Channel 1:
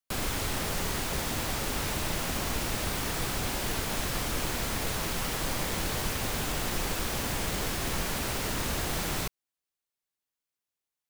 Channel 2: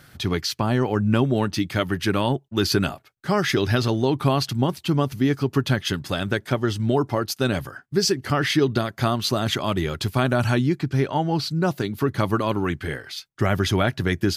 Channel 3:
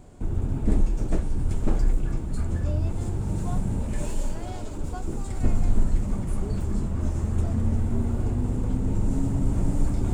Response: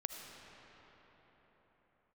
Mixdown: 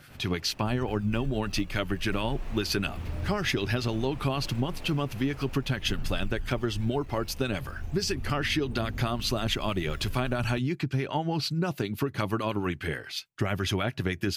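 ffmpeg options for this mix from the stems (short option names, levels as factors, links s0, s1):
-filter_complex "[0:a]lowpass=f=1000:p=1,volume=0.335,afade=t=in:st=2.02:d=0.31:silence=0.334965,afade=t=out:st=5.32:d=0.65:silence=0.316228[s0];[1:a]acrossover=split=1000[s1][s2];[s1]aeval=exprs='val(0)*(1-0.5/2+0.5/2*cos(2*PI*9.3*n/s))':c=same[s3];[s2]aeval=exprs='val(0)*(1-0.5/2-0.5/2*cos(2*PI*9.3*n/s))':c=same[s4];[s3][s4]amix=inputs=2:normalize=0,volume=0.944[s5];[2:a]acrusher=samples=17:mix=1:aa=0.000001:lfo=1:lforange=27.2:lforate=0.22,aphaser=in_gain=1:out_gain=1:delay=2:decay=0.67:speed=0.36:type=triangular,adelay=450,volume=0.126[s6];[s0][s5][s6]amix=inputs=3:normalize=0,equalizer=f=2600:w=3.1:g=7,acompressor=threshold=0.0631:ratio=6"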